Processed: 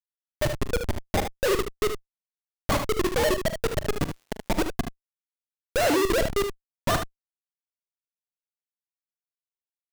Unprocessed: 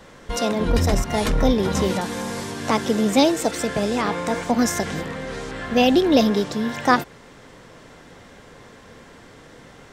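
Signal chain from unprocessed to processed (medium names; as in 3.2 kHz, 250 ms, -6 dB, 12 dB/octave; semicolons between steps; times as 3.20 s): formants replaced by sine waves; reverb removal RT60 1.1 s; bass shelf 390 Hz -4 dB; Schmitt trigger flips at -18.5 dBFS; 3.96–4.48 s: crackle 190 per s -> 42 per s -49 dBFS; early reflections 43 ms -14 dB, 75 ms -7.5 dB; trim +2.5 dB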